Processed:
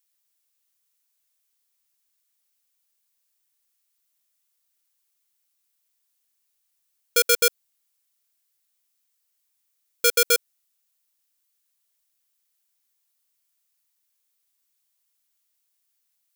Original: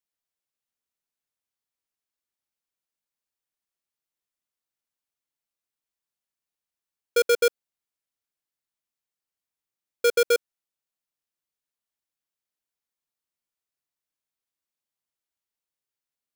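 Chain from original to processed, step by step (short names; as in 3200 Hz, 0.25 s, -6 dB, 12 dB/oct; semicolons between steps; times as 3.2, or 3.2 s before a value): tilt +3.5 dB/oct; in parallel at +2 dB: limiter -11 dBFS, peak gain reduction 10 dB; on the sum: gain -3 dB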